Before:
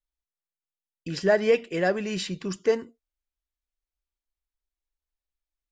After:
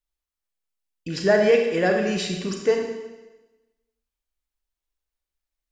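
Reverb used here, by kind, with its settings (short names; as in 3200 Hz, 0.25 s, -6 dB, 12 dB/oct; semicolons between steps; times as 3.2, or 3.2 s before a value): Schroeder reverb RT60 1.1 s, combs from 30 ms, DRR 2.5 dB; gain +2 dB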